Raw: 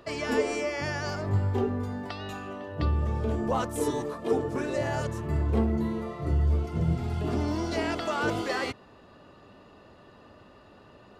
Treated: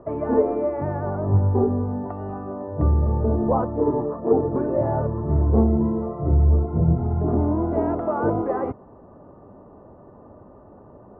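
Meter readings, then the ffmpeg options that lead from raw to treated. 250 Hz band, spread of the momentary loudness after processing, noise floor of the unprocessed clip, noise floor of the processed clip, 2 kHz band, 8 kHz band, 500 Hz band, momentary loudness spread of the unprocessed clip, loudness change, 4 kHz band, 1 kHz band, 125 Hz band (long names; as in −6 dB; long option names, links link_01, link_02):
+7.5 dB, 9 LU, −54 dBFS, −47 dBFS, −10.0 dB, below −35 dB, +7.5 dB, 7 LU, +7.0 dB, below −30 dB, +5.5 dB, +7.5 dB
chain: -af "lowpass=frequency=1000:width=0.5412,lowpass=frequency=1000:width=1.3066,volume=7.5dB"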